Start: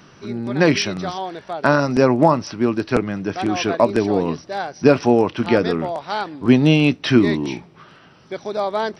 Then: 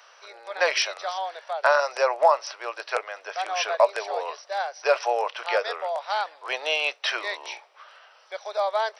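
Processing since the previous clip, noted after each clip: steep high-pass 530 Hz 48 dB/oct; gain -2 dB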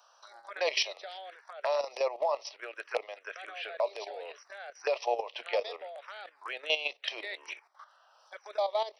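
level quantiser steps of 12 dB; envelope phaser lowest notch 340 Hz, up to 1500 Hz, full sweep at -30 dBFS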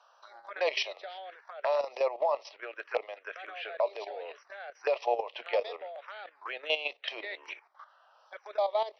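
air absorption 190 m; gain +2 dB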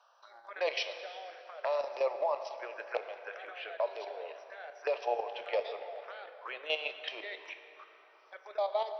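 plate-style reverb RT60 3.4 s, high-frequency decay 0.65×, DRR 8 dB; gain -3.5 dB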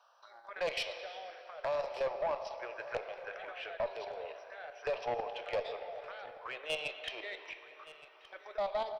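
tube stage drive 27 dB, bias 0.25; echo 1.17 s -18 dB

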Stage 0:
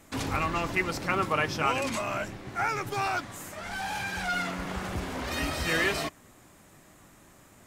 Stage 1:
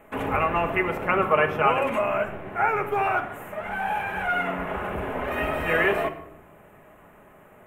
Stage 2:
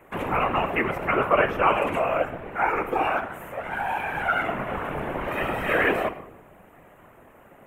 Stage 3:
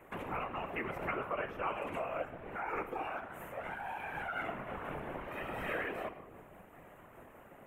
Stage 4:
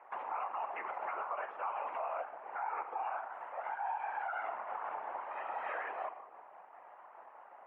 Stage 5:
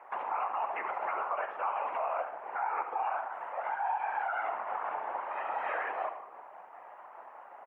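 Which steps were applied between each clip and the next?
EQ curve 250 Hz 0 dB, 500 Hz +10 dB, 2800 Hz +2 dB, 4700 Hz -26 dB, 13000 Hz -2 dB; shoebox room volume 2400 m³, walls furnished, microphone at 1.4 m; gain -1 dB
whisperiser
compressor 2:1, threshold -38 dBFS, peak gain reduction 13 dB; noise-modulated level, depth 55%; gain -2 dB
ladder band-pass 980 Hz, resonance 55%; limiter -40.5 dBFS, peak gain reduction 8 dB; gain +11.5 dB
echo 72 ms -12 dB; gain +5 dB

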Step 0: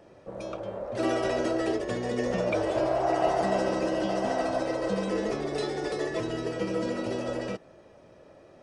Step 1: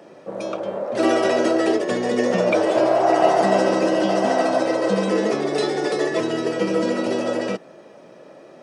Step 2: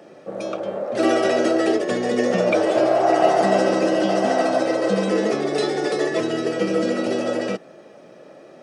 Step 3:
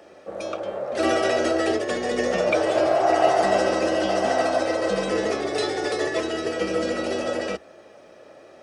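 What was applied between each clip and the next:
HPF 160 Hz 24 dB/oct; gain +9 dB
notch 970 Hz, Q 8.5
octaver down 2 oct, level -4 dB; HPF 500 Hz 6 dB/oct

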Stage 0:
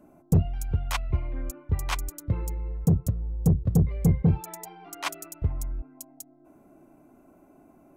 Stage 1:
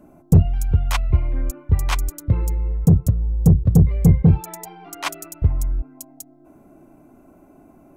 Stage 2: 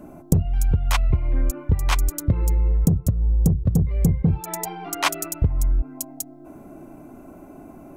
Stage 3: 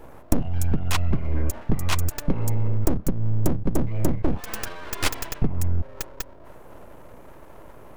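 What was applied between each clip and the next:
low shelf 150 Hz +5.5 dB; gain +5 dB
compressor 16:1, threshold -22 dBFS, peak gain reduction 15.5 dB; gain +7 dB
full-wave rectifier

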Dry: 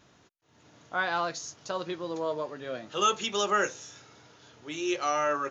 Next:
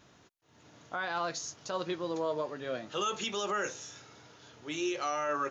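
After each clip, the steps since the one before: limiter -23.5 dBFS, peak gain reduction 10.5 dB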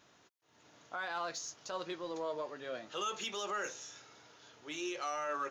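low shelf 240 Hz -11 dB; in parallel at -9.5 dB: soft clip -38.5 dBFS, distortion -7 dB; on the sum: gain -5 dB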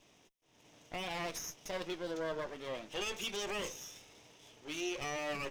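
minimum comb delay 0.35 ms; gain +1.5 dB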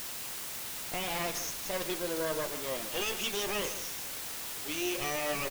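in parallel at -4 dB: requantised 6-bit, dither triangular; on the sum: echo 0.156 s -12 dB

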